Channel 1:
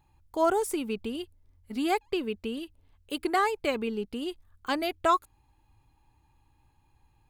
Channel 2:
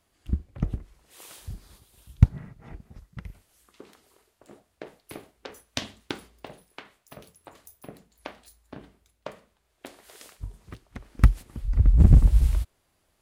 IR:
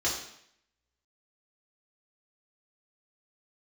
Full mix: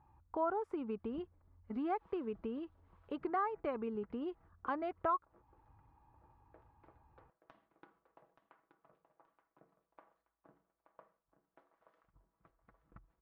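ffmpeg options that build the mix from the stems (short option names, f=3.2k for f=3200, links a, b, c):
-filter_complex "[0:a]highpass=42,volume=-1.5dB,asplit=2[a][b];[1:a]lowshelf=f=230:g=-10.5,acompressor=threshold=-32dB:ratio=6,aecho=1:1:6.1:0.55,adelay=850,volume=-11.5dB,asplit=2[c][d];[d]volume=-12dB[e];[b]apad=whole_len=620585[f];[c][f]sidechaingate=range=-33dB:threshold=-56dB:ratio=16:detection=peak[g];[e]aecho=0:1:876|1752|2628|3504|4380:1|0.33|0.109|0.0359|0.0119[h];[a][g][h]amix=inputs=3:normalize=0,lowpass=f=1.2k:t=q:w=1.9,acompressor=threshold=-42dB:ratio=2"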